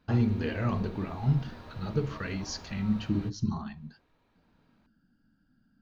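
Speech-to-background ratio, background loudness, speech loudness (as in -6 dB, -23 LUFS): 16.5 dB, -48.0 LUFS, -31.5 LUFS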